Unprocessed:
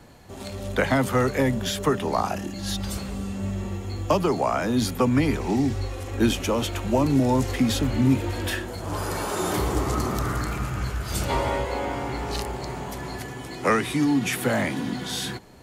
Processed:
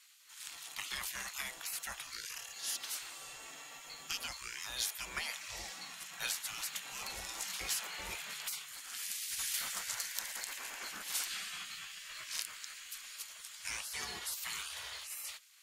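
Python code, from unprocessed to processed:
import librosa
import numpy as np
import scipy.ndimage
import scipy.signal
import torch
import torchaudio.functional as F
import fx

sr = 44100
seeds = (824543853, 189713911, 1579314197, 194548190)

y = fx.spec_gate(x, sr, threshold_db=-20, keep='weak')
y = fx.tone_stack(y, sr, knobs='5-5-5')
y = y * librosa.db_to_amplitude(5.5)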